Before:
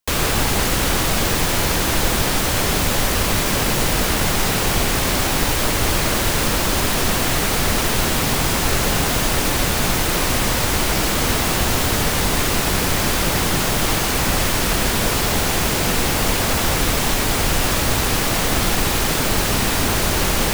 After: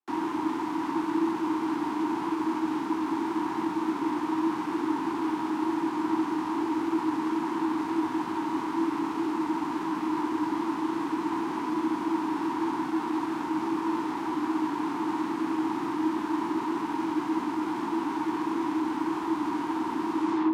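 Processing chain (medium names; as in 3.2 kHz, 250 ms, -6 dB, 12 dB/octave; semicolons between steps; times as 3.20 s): tape stop on the ending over 0.44 s; in parallel at +0.5 dB: peak limiter -13 dBFS, peak gain reduction 7.5 dB; on the sum: wavefolder -13.5 dBFS; vibrato 0.65 Hz 10 cents; formant shift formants -3 st; frequency shift -290 Hz; two resonant band-passes 520 Hz, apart 1.6 oct; frequency shift +39 Hz; on a send: flutter echo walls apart 11.4 m, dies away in 0.44 s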